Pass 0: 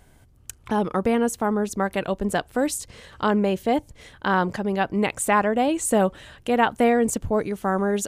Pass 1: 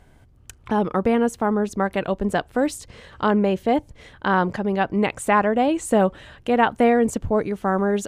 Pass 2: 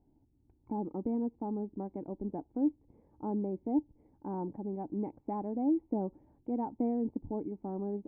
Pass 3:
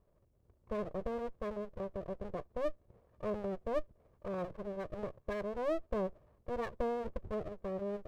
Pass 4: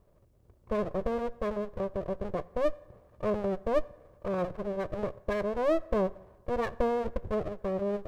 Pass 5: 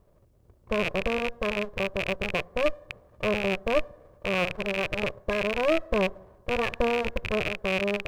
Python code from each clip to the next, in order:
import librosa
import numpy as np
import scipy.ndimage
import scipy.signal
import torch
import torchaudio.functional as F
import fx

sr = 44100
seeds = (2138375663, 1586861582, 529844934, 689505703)

y1 = fx.high_shelf(x, sr, hz=5600.0, db=-11.5)
y1 = y1 * 10.0 ** (2.0 / 20.0)
y2 = fx.formant_cascade(y1, sr, vowel='u')
y2 = y2 * 10.0 ** (-4.0 / 20.0)
y3 = fx.lower_of_two(y2, sr, delay_ms=1.8)
y4 = fx.rev_fdn(y3, sr, rt60_s=1.3, lf_ratio=0.7, hf_ratio=0.6, size_ms=55.0, drr_db=18.0)
y4 = y4 * 10.0 ** (7.5 / 20.0)
y5 = fx.rattle_buzz(y4, sr, strikes_db=-44.0, level_db=-19.0)
y5 = y5 * 10.0 ** (2.5 / 20.0)